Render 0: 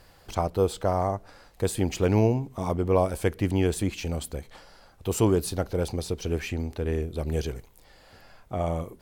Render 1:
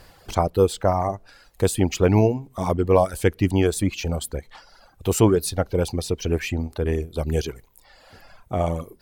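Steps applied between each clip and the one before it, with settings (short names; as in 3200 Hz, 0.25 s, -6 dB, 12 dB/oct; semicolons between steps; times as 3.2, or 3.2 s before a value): reverb removal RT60 1 s; gain +6 dB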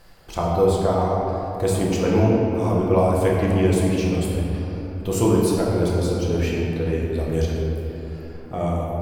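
shoebox room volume 190 m³, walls hard, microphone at 0.8 m; gain -5.5 dB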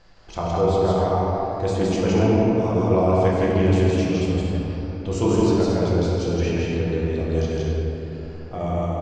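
steep low-pass 7000 Hz 48 dB/oct; on a send: loudspeakers at several distances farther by 56 m -1 dB, 78 m -9 dB, 89 m -10 dB; on the sum: gain -3 dB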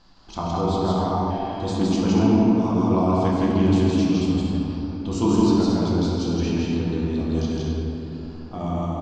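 spectral repair 1.33–1.74, 940–3300 Hz after; graphic EQ 125/250/500/1000/2000/4000 Hz -3/+11/-9/+7/-7/+7 dB; gain -2.5 dB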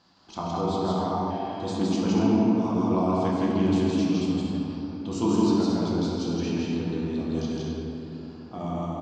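HPF 120 Hz 12 dB/oct; gain -3.5 dB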